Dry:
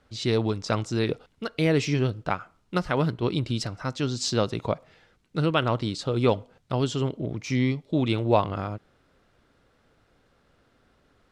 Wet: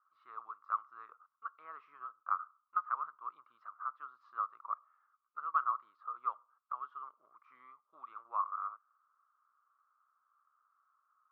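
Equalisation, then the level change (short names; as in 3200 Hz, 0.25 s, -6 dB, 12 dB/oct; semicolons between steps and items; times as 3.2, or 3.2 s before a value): Butterworth band-pass 1200 Hz, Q 5.7; air absorption 82 m; +2.5 dB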